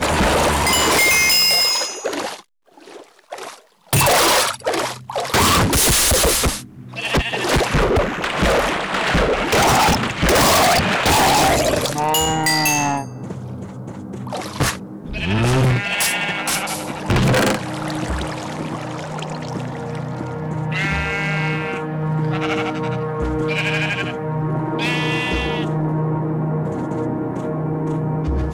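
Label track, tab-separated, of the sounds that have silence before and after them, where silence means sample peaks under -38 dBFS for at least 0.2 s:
2.770000	3.610000	sound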